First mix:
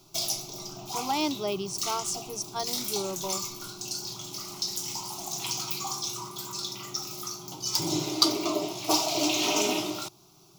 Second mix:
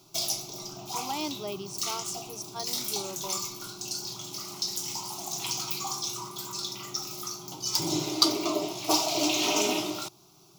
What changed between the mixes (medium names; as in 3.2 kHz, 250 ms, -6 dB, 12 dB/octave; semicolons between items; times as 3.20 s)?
speech -5.5 dB; master: add bass shelf 75 Hz -5 dB